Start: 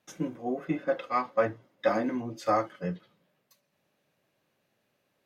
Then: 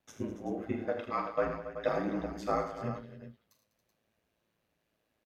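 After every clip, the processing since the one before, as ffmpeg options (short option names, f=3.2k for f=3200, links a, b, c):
-af "lowshelf=f=82:g=11,aeval=exprs='val(0)*sin(2*PI*55*n/s)':c=same,aecho=1:1:42|79|108|199|278|380:0.316|0.316|0.251|0.178|0.224|0.266,volume=-3.5dB"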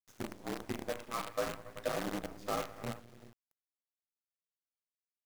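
-af "acrusher=bits=6:dc=4:mix=0:aa=0.000001,volume=-5dB"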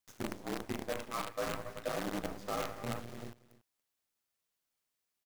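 -af "areverse,acompressor=threshold=-45dB:ratio=4,areverse,aecho=1:1:283:0.119,volume=10dB"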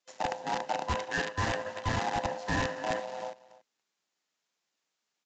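-filter_complex "[0:a]afftfilt=real='real(if(lt(b,1008),b+24*(1-2*mod(floor(b/24),2)),b),0)':imag='imag(if(lt(b,1008),b+24*(1-2*mod(floor(b/24),2)),b),0)':win_size=2048:overlap=0.75,acrossover=split=150|1200[a][b][c];[a]acrusher=bits=6:mix=0:aa=0.000001[d];[d][b][c]amix=inputs=3:normalize=0,aresample=16000,aresample=44100,volume=6.5dB"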